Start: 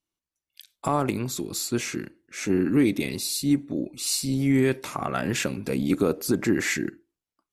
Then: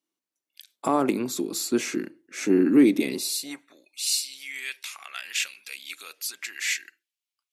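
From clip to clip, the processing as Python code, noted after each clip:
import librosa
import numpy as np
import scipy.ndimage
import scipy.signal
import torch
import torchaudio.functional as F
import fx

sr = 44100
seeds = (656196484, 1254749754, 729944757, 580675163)

y = fx.hum_notches(x, sr, base_hz=50, count=3)
y = fx.filter_sweep_highpass(y, sr, from_hz=270.0, to_hz=2700.0, start_s=3.14, end_s=3.9, q=1.6)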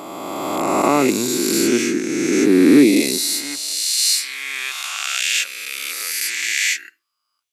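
y = fx.spec_swells(x, sr, rise_s=2.62)
y = F.gain(torch.from_numpy(y), 4.0).numpy()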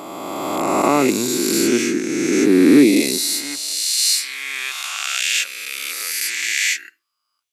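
y = x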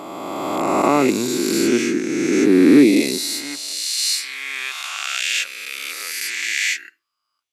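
y = fx.high_shelf(x, sr, hz=6100.0, db=-7.5)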